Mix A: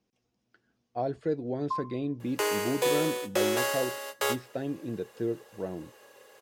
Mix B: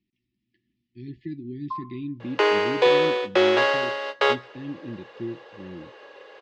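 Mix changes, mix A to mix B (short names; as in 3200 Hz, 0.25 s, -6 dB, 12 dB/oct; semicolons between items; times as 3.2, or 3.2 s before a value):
speech: add brick-wall FIR band-stop 390–1700 Hz; second sound +9.0 dB; master: add LPF 4000 Hz 24 dB/oct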